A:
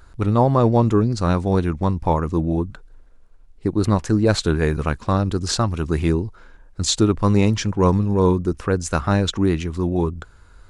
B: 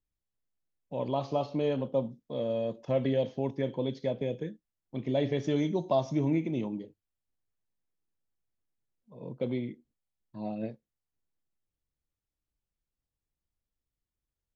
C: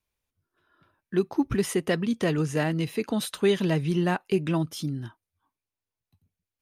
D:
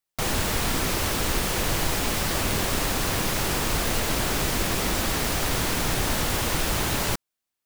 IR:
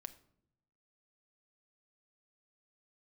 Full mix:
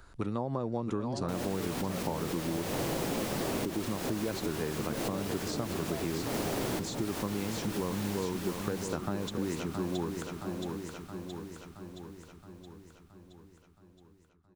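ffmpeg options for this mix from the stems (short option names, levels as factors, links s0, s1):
-filter_complex "[0:a]acompressor=threshold=0.112:ratio=6,volume=0.631,asplit=3[s0][s1][s2];[s1]volume=0.355[s3];[1:a]volume=0.282[s4];[2:a]volume=0.112[s5];[3:a]adelay=1100,volume=1.41,asplit=2[s6][s7];[s7]volume=0.15[s8];[s2]apad=whole_len=386137[s9];[s6][s9]sidechaincompress=threshold=0.01:ratio=4:attack=8.2:release=116[s10];[s3][s8]amix=inputs=2:normalize=0,aecho=0:1:671|1342|2013|2684|3355|4026|4697|5368|6039:1|0.57|0.325|0.185|0.106|0.0602|0.0343|0.0195|0.0111[s11];[s0][s4][s5][s10][s11]amix=inputs=5:normalize=0,acrossover=split=130|700[s12][s13][s14];[s12]acompressor=threshold=0.00178:ratio=4[s15];[s13]acompressor=threshold=0.0282:ratio=4[s16];[s14]acompressor=threshold=0.00891:ratio=4[s17];[s15][s16][s17]amix=inputs=3:normalize=0"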